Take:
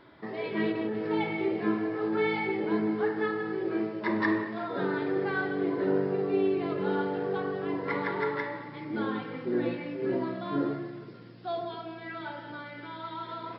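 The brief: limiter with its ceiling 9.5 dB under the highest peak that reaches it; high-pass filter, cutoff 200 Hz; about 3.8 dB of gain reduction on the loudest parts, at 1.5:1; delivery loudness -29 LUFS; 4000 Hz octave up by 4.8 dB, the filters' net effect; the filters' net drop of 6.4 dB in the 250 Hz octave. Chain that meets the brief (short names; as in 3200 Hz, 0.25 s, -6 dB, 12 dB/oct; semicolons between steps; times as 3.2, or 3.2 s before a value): HPF 200 Hz; bell 250 Hz -8 dB; bell 4000 Hz +6 dB; compressor 1.5:1, threshold -36 dBFS; gain +9 dB; limiter -19.5 dBFS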